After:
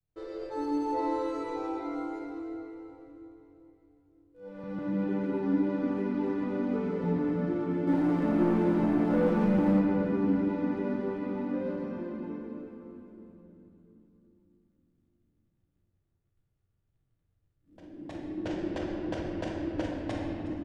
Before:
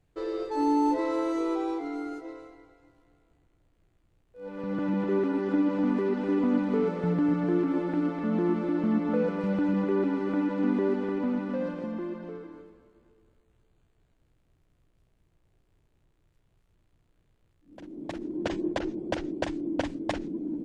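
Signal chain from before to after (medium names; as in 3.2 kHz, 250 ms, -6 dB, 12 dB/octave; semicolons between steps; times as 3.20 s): expander -59 dBFS; peaking EQ 90 Hz +9.5 dB 1.3 oct; 7.87–9.79 s: waveshaping leveller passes 2; feedback delay 362 ms, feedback 52%, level -16.5 dB; simulated room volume 150 m³, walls hard, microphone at 0.6 m; trim -9 dB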